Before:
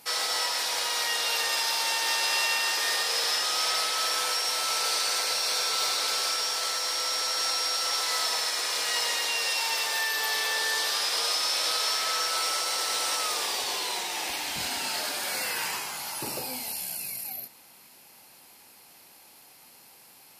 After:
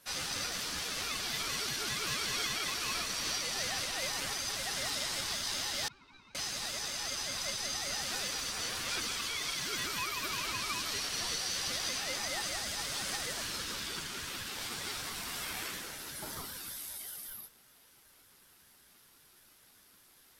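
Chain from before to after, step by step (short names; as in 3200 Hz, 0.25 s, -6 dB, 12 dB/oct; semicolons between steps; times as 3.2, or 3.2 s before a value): chorus voices 4, 0.42 Hz, delay 10 ms, depth 4.5 ms; 5.88–6.35 octave resonator G, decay 0.15 s; ring modulator with a swept carrier 630 Hz, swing 25%, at 5.2 Hz; gain -2.5 dB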